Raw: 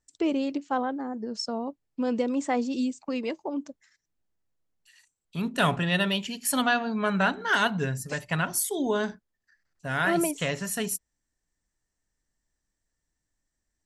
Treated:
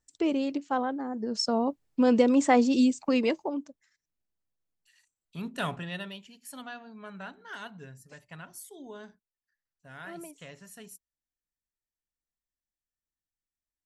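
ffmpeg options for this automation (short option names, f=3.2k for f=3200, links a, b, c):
-af "volume=5.5dB,afade=t=in:st=1.09:d=0.52:silence=0.473151,afade=t=out:st=3.24:d=0.44:silence=0.237137,afade=t=out:st=5.48:d=0.76:silence=0.281838"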